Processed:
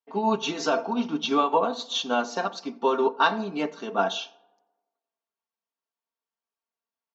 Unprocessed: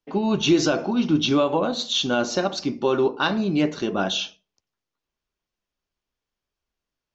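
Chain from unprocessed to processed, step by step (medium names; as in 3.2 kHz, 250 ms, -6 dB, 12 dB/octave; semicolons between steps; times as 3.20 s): high-pass 250 Hz 12 dB/octave; peaking EQ 930 Hz +9.5 dB 1.1 oct; comb 4.4 ms, depth 75%; on a send: tape echo 89 ms, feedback 67%, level -17.5 dB, low-pass 1.8 kHz; on the sum: upward expansion 1.5:1, over -30 dBFS; trim -4.5 dB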